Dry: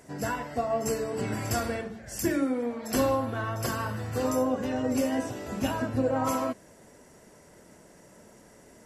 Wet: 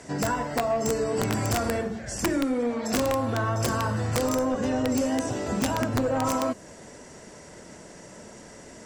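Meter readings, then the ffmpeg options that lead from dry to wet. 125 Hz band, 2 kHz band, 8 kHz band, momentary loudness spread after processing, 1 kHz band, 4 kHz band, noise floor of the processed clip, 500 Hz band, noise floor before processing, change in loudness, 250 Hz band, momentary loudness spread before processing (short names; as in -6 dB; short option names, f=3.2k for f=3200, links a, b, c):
+5.0 dB, +3.5 dB, +4.5 dB, 20 LU, +3.0 dB, +5.0 dB, -47 dBFS, +2.5 dB, -55 dBFS, +3.0 dB, +2.5 dB, 6 LU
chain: -filter_complex "[0:a]aeval=exprs='0.188*sin(PI/2*1.58*val(0)/0.188)':c=same,lowpass=f=8.8k:w=0.5412,lowpass=f=8.8k:w=1.3066,equalizer=f=5.1k:t=o:w=2.5:g=3.5,acrossover=split=84|1500|5900[a][b][c][d];[a]acompressor=threshold=-37dB:ratio=4[e];[b]acompressor=threshold=-23dB:ratio=4[f];[c]acompressor=threshold=-45dB:ratio=4[g];[d]acompressor=threshold=-37dB:ratio=4[h];[e][f][g][h]amix=inputs=4:normalize=0,aeval=exprs='(mod(6.68*val(0)+1,2)-1)/6.68':c=same,bandreject=f=408.7:t=h:w=4,bandreject=f=817.4:t=h:w=4,bandreject=f=1.2261k:t=h:w=4,bandreject=f=1.6348k:t=h:w=4,bandreject=f=2.0435k:t=h:w=4,bandreject=f=2.4522k:t=h:w=4,bandreject=f=2.8609k:t=h:w=4,bandreject=f=3.2696k:t=h:w=4,bandreject=f=3.6783k:t=h:w=4,bandreject=f=4.087k:t=h:w=4,bandreject=f=4.4957k:t=h:w=4,bandreject=f=4.9044k:t=h:w=4,bandreject=f=5.3131k:t=h:w=4,bandreject=f=5.7218k:t=h:w=4,bandreject=f=6.1305k:t=h:w=4,bandreject=f=6.5392k:t=h:w=4,bandreject=f=6.9479k:t=h:w=4,bandreject=f=7.3566k:t=h:w=4,bandreject=f=7.7653k:t=h:w=4,bandreject=f=8.174k:t=h:w=4,bandreject=f=8.5827k:t=h:w=4,bandreject=f=8.9914k:t=h:w=4,bandreject=f=9.4001k:t=h:w=4,bandreject=f=9.8088k:t=h:w=4,bandreject=f=10.2175k:t=h:w=4,bandreject=f=10.6262k:t=h:w=4,bandreject=f=11.0349k:t=h:w=4,bandreject=f=11.4436k:t=h:w=4,bandreject=f=11.8523k:t=h:w=4,bandreject=f=12.261k:t=h:w=4,bandreject=f=12.6697k:t=h:w=4,bandreject=f=13.0784k:t=h:w=4,bandreject=f=13.4871k:t=h:w=4,bandreject=f=13.8958k:t=h:w=4"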